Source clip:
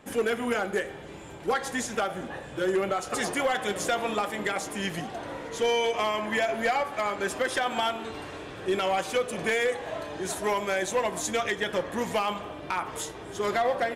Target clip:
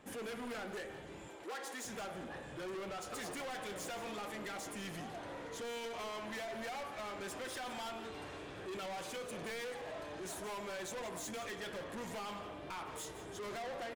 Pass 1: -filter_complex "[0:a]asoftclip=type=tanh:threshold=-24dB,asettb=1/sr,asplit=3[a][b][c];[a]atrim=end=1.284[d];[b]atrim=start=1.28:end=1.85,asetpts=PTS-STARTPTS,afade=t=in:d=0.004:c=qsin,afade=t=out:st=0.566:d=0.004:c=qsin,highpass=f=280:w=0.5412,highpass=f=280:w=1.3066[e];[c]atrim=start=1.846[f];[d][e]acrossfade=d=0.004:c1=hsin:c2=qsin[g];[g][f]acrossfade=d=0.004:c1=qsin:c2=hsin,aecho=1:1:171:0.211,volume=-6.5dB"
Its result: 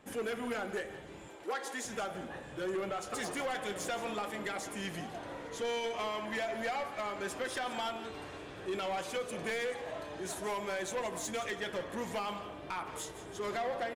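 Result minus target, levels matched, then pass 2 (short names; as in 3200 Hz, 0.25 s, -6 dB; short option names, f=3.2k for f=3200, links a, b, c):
soft clip: distortion -9 dB
-filter_complex "[0:a]asoftclip=type=tanh:threshold=-34.5dB,asettb=1/sr,asplit=3[a][b][c];[a]atrim=end=1.284[d];[b]atrim=start=1.28:end=1.85,asetpts=PTS-STARTPTS,afade=t=in:d=0.004:c=qsin,afade=t=out:st=0.566:d=0.004:c=qsin,highpass=f=280:w=0.5412,highpass=f=280:w=1.3066[e];[c]atrim=start=1.846[f];[d][e]acrossfade=d=0.004:c1=hsin:c2=qsin[g];[g][f]acrossfade=d=0.004:c1=qsin:c2=hsin,aecho=1:1:171:0.211,volume=-6.5dB"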